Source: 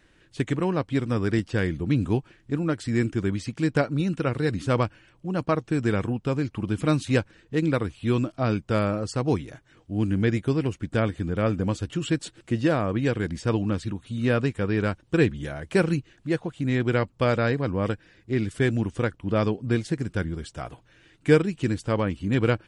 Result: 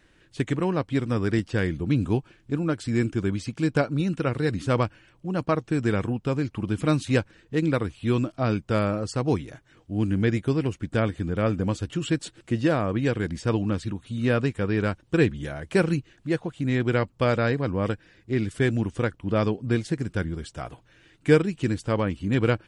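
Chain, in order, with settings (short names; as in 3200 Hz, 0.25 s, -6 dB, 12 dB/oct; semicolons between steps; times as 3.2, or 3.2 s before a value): 1.74–3.95 notch 1900 Hz, Q 12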